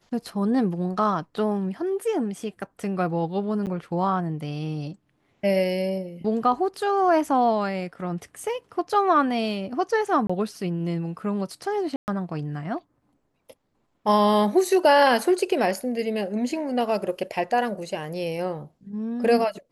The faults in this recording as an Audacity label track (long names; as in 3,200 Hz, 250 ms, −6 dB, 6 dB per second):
3.660000	3.670000	drop-out 8.4 ms
10.270000	10.290000	drop-out 25 ms
11.960000	12.080000	drop-out 119 ms